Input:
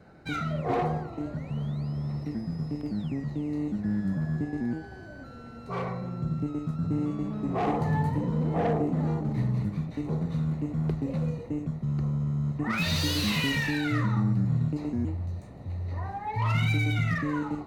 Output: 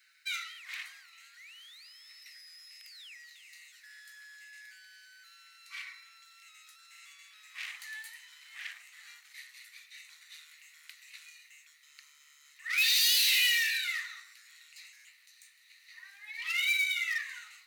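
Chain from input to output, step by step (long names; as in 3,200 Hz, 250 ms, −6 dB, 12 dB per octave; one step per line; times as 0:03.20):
Butterworth high-pass 1,900 Hz 36 dB per octave
high-shelf EQ 9,800 Hz +12 dB
level +4.5 dB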